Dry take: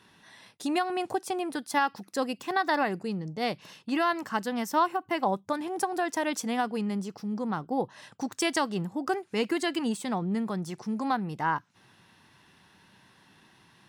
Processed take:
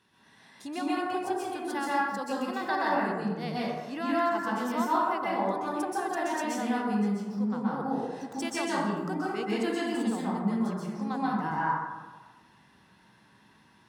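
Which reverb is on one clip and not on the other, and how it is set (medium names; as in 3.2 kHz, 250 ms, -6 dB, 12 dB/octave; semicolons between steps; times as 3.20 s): plate-style reverb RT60 1.3 s, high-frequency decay 0.4×, pre-delay 115 ms, DRR -7.5 dB; trim -9.5 dB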